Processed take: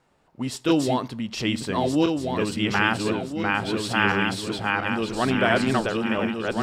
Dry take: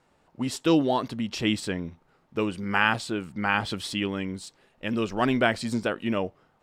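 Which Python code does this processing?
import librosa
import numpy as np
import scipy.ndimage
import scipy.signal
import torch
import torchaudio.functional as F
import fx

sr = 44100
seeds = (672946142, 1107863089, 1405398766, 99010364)

y = fx.reverse_delay_fb(x, sr, ms=687, feedback_pct=58, wet_db=0.0)
y = fx.rev_fdn(y, sr, rt60_s=0.59, lf_ratio=1.0, hf_ratio=0.75, size_ms=44.0, drr_db=17.5)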